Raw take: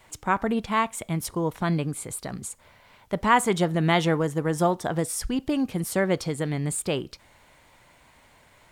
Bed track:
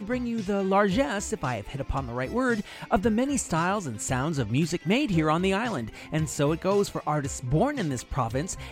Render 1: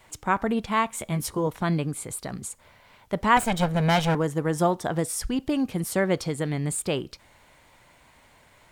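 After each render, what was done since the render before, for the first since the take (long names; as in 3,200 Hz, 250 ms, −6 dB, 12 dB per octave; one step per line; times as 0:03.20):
0:00.88–0:01.47: double-tracking delay 14 ms −4.5 dB
0:03.37–0:04.15: lower of the sound and its delayed copy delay 1.3 ms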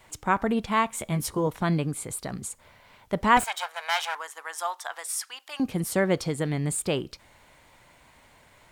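0:03.44–0:05.60: high-pass filter 890 Hz 24 dB per octave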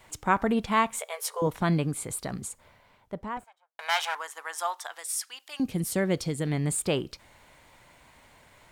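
0:00.99–0:01.42: linear-phase brick-wall high-pass 410 Hz
0:02.24–0:03.79: fade out and dull
0:04.86–0:06.47: parametric band 1,000 Hz −7 dB 2.2 octaves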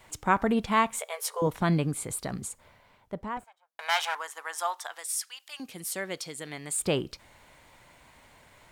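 0:05.06–0:06.80: high-pass filter 1,200 Hz 6 dB per octave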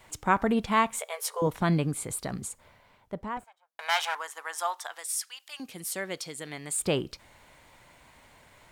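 no processing that can be heard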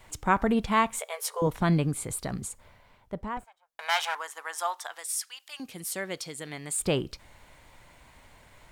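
low-shelf EQ 66 Hz +11 dB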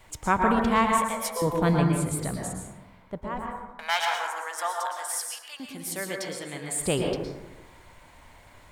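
dense smooth reverb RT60 1.1 s, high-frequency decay 0.35×, pre-delay 100 ms, DRR 0.5 dB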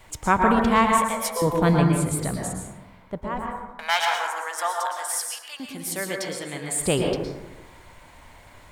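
level +3.5 dB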